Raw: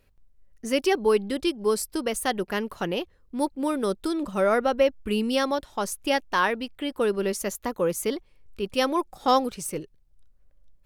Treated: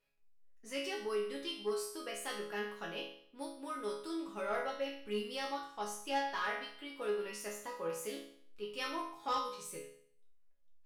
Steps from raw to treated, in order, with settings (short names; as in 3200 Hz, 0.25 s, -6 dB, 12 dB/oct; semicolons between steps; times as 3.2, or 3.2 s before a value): resonator bank C#3 minor, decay 0.58 s; overdrive pedal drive 12 dB, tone 6800 Hz, clips at -26 dBFS; gain +1 dB